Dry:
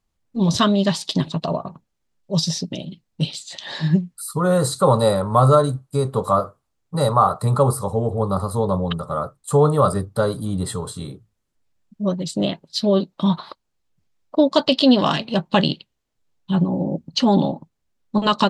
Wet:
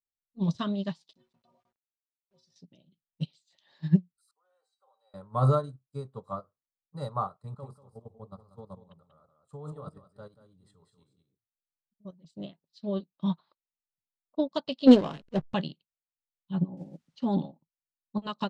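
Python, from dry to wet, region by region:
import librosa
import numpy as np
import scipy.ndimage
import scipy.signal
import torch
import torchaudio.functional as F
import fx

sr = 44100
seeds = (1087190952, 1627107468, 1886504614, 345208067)

y = fx.chain(x, sr, fx.stiff_resonator(f0_hz=110.0, decay_s=0.36, stiffness=0.03),
    fx.sample_gate(floor_db=-45.0), at=(1.13, 2.56))
y = fx.chain(y, sr, fx.highpass(hz=560.0, slope=24),
    fx.high_shelf(hz=6600.0, db=-8.0),
    fx.comb_fb(f0_hz=780.0, decay_s=0.24, harmonics='all', damping=0.0, mix_pct=90), at=(4.31, 5.14))
y = fx.chain(y, sr, fx.level_steps(step_db=10),
    fx.echo_single(ms=189, db=-6.5), at=(7.36, 12.25))
y = fx.chain(y, sr, fx.peak_eq(hz=450.0, db=9.0, octaves=0.97),
    fx.backlash(play_db=-18.0),
    fx.sustainer(db_per_s=79.0), at=(14.87, 15.54))
y = fx.chain(y, sr, fx.quant_dither(seeds[0], bits=8, dither='triangular'),
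    fx.band_squash(depth_pct=40), at=(16.77, 17.18))
y = scipy.signal.sosfilt(scipy.signal.butter(2, 6500.0, 'lowpass', fs=sr, output='sos'), y)
y = fx.dynamic_eq(y, sr, hz=160.0, q=1.1, threshold_db=-30.0, ratio=4.0, max_db=5)
y = fx.upward_expand(y, sr, threshold_db=-24.0, expansion=2.5)
y = y * librosa.db_to_amplitude(-4.5)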